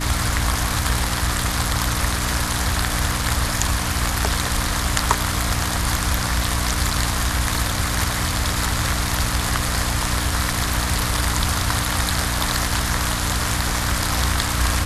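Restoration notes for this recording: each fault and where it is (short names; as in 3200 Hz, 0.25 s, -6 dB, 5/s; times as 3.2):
hum 60 Hz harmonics 5 -26 dBFS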